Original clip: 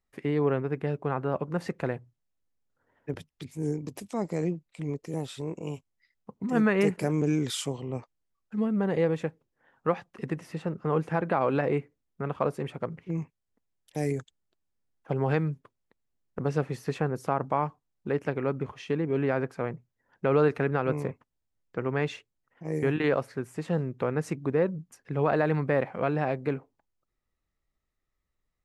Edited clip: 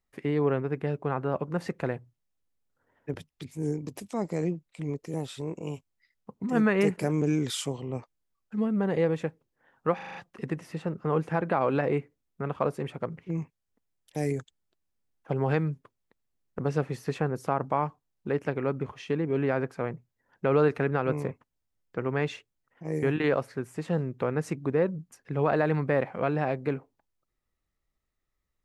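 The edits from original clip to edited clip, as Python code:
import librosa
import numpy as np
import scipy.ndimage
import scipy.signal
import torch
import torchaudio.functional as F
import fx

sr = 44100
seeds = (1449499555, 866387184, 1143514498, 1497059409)

y = fx.edit(x, sr, fx.stutter(start_s=9.95, slice_s=0.04, count=6), tone=tone)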